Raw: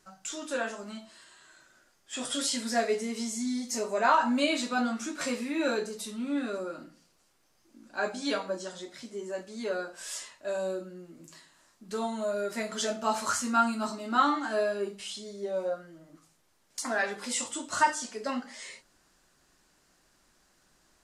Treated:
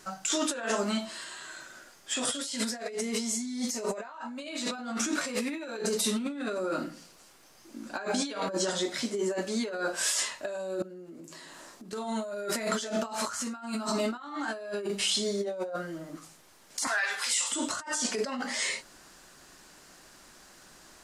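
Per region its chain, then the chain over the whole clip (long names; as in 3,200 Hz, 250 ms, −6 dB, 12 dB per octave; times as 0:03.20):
0:10.82–0:11.93: parametric band 400 Hz +7.5 dB 2.1 octaves + downward compressor, threshold −56 dBFS
0:16.87–0:17.52: high-pass filter 1,300 Hz + downward compressor 2.5 to 1, threshold −41 dBFS + double-tracking delay 34 ms −11 dB
whole clip: low-shelf EQ 140 Hz −6.5 dB; compressor whose output falls as the input rises −40 dBFS, ratio −1; level +6.5 dB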